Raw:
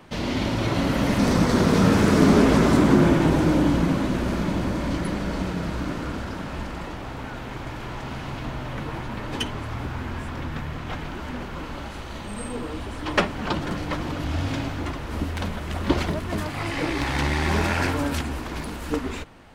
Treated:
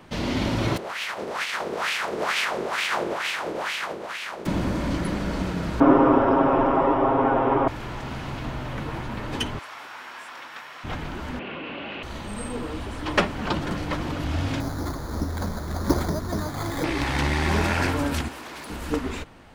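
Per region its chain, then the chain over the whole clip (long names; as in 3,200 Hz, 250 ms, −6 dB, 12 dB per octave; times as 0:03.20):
0:00.76–0:04.45: compressing power law on the bin magnitudes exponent 0.29 + notch filter 280 Hz, Q 5.6 + LFO wah 2.2 Hz 380–2,600 Hz, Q 2.3
0:05.80–0:07.68: Savitzky-Golay smoothing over 25 samples + flat-topped bell 590 Hz +15.5 dB 2.5 octaves + comb filter 7.4 ms, depth 84%
0:09.58–0:10.83: high-pass filter 920 Hz + steady tone 5,500 Hz −62 dBFS
0:11.39–0:12.03: loudspeaker in its box 240–3,200 Hz, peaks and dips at 920 Hz −7 dB, 1,700 Hz −3 dB, 2,700 Hz +10 dB + notch filter 1,300 Hz, Q 11 + envelope flattener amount 100%
0:14.60–0:16.84: low-pass filter 1,800 Hz 24 dB per octave + bad sample-rate conversion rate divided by 8×, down filtered, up hold
0:18.28–0:18.70: high-pass filter 660 Hz 6 dB per octave + hard clipping −34 dBFS
whole clip: no processing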